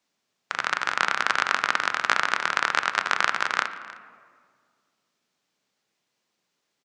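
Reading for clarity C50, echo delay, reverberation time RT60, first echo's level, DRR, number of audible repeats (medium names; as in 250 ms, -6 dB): 11.0 dB, 309 ms, 1.9 s, -20.0 dB, 9.0 dB, 1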